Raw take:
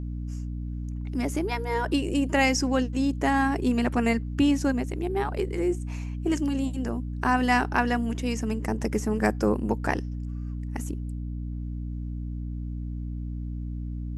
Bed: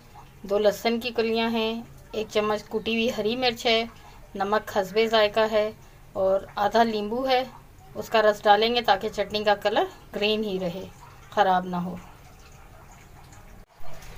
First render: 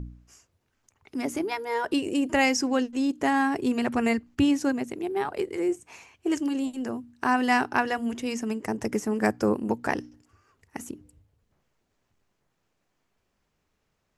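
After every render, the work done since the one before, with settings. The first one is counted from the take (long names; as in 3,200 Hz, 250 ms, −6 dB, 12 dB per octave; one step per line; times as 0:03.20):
hum removal 60 Hz, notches 5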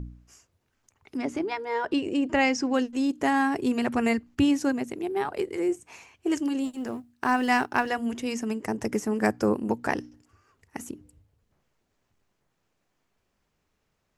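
0:01.17–0:02.74: high-frequency loss of the air 96 metres
0:06.65–0:07.90: mu-law and A-law mismatch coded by A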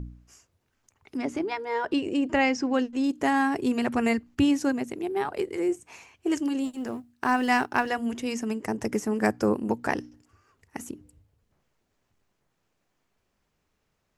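0:02.38–0:03.04: high-shelf EQ 7,600 Hz −11 dB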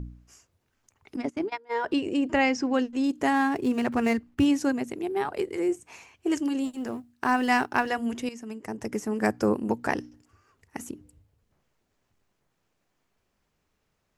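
0:01.16–0:01.83: noise gate −31 dBFS, range −20 dB
0:03.32–0:04.46: running median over 9 samples
0:08.29–0:09.41: fade in linear, from −12 dB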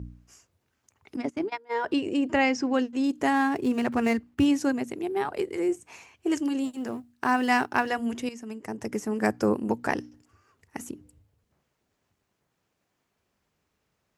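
high-pass filter 56 Hz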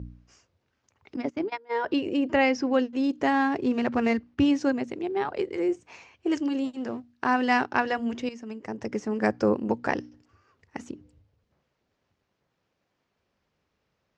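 low-pass filter 5,700 Hz 24 dB per octave
parametric band 530 Hz +4 dB 0.24 octaves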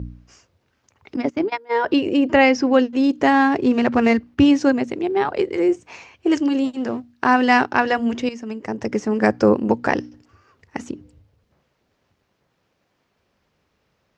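level +8 dB
brickwall limiter −3 dBFS, peak gain reduction 2.5 dB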